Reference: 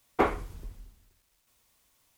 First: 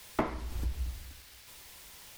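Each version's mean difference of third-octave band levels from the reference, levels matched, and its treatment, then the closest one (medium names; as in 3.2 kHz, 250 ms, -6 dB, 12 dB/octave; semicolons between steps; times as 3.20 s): 10.0 dB: compression 16:1, threshold -45 dBFS, peak gain reduction 27 dB; band noise 1.6–5.6 kHz -76 dBFS; frequency shift -100 Hz; trim +16.5 dB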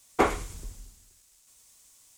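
3.5 dB: peaking EQ 7.5 kHz +14 dB 1.3 oct; on a send: feedback echo behind a high-pass 102 ms, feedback 33%, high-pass 3.7 kHz, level -5 dB; on the sum: trim +1.5 dB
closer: second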